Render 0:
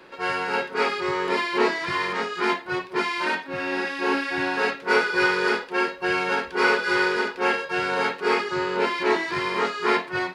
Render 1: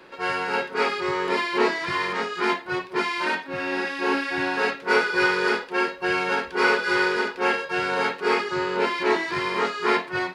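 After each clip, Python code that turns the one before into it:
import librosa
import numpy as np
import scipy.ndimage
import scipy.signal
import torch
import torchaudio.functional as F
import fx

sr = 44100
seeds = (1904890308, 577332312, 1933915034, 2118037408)

y = x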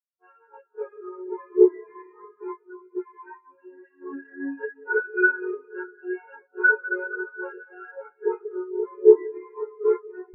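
y = fx.high_shelf(x, sr, hz=2700.0, db=-2.5)
y = fx.rev_freeverb(y, sr, rt60_s=4.7, hf_ratio=0.75, predelay_ms=95, drr_db=2.0)
y = fx.spectral_expand(y, sr, expansion=4.0)
y = y * 10.0 ** (6.5 / 20.0)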